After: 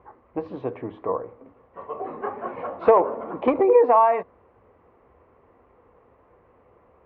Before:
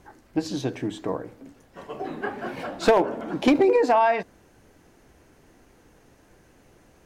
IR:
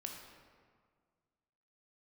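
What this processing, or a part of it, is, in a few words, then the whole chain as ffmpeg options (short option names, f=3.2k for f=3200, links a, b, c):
bass cabinet: -af "highpass=60,equalizer=f=140:t=q:w=4:g=-10,equalizer=f=200:t=q:w=4:g=-6,equalizer=f=300:t=q:w=4:g=-8,equalizer=f=490:t=q:w=4:g=6,equalizer=f=1.1k:t=q:w=4:g=10,equalizer=f=1.6k:t=q:w=4:g=-10,lowpass=f=2k:w=0.5412,lowpass=f=2k:w=1.3066"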